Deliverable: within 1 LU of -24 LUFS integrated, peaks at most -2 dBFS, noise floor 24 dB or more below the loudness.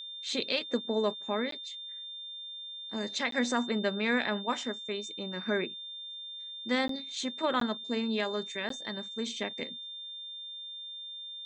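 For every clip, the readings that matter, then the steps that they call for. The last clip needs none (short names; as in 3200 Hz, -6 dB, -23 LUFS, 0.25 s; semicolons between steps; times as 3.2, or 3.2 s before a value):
dropouts 5; longest dropout 13 ms; steady tone 3600 Hz; tone level -40 dBFS; loudness -33.5 LUFS; peak -16.0 dBFS; loudness target -24.0 LUFS
-> interpolate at 1.51/3.31/6.88/7.6/8.69, 13 ms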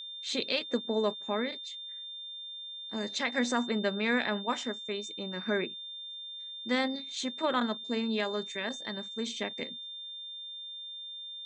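dropouts 0; steady tone 3600 Hz; tone level -40 dBFS
-> notch 3600 Hz, Q 30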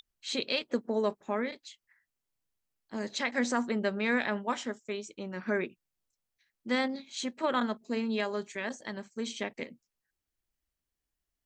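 steady tone none; loudness -33.0 LUFS; peak -16.5 dBFS; loudness target -24.0 LUFS
-> gain +9 dB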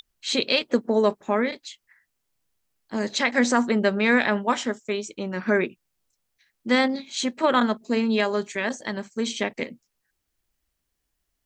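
loudness -24.0 LUFS; peak -7.5 dBFS; noise floor -79 dBFS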